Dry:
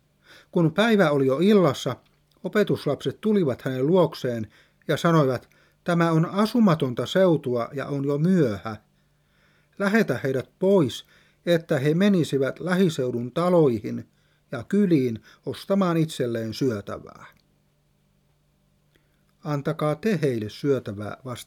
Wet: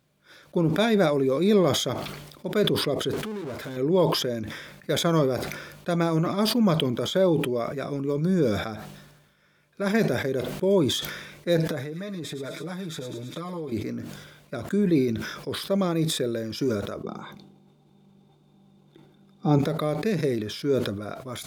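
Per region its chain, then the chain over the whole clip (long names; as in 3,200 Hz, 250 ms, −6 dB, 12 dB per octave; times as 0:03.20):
0:03.13–0:03.77: downward compressor 2.5 to 1, threshold −36 dBFS + notch comb filter 180 Hz + power curve on the samples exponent 0.5
0:11.58–0:13.72: comb filter 6.6 ms, depth 88% + delay with a high-pass on its return 108 ms, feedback 56%, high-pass 2,700 Hz, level −4.5 dB + downward compressor 10 to 1, threshold −28 dBFS
0:17.03–0:19.59: high-shelf EQ 11,000 Hz −9 dB + notch filter 1,800 Hz, Q 6.5 + hollow resonant body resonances 210/340/780/3,600 Hz, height 16 dB, ringing for 35 ms
whole clip: high-pass filter 140 Hz 6 dB per octave; dynamic equaliser 1,400 Hz, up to −6 dB, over −39 dBFS, Q 1.6; level that may fall only so fast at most 49 dB per second; level −1.5 dB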